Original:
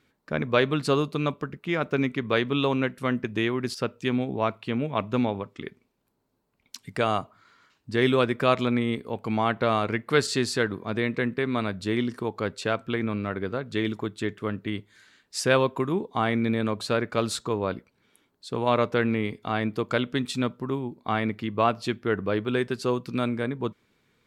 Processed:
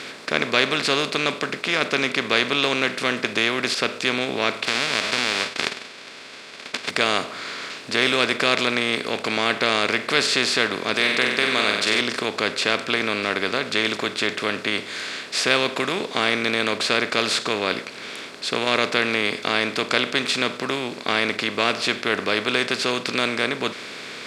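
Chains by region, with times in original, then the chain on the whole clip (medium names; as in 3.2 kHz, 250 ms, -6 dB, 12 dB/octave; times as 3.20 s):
4.64–6.89 s: formants flattened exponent 0.1 + low-pass 3.7 kHz + compression 4:1, threshold -31 dBFS
10.94–12.01 s: tilt EQ +2.5 dB/octave + flutter echo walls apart 8.1 m, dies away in 0.44 s
whole clip: spectral levelling over time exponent 0.4; frequency weighting D; trim -5.5 dB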